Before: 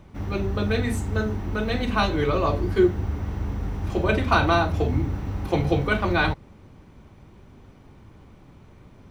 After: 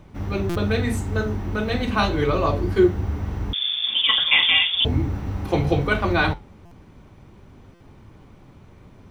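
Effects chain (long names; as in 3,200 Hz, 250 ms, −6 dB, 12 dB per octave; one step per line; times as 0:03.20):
flanger 0.85 Hz, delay 6.4 ms, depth 5.4 ms, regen −75%
0:03.53–0:04.85: voice inversion scrambler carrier 3,500 Hz
buffer that repeats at 0:00.49/0:06.65/0:07.74, samples 256, times 10
level +6 dB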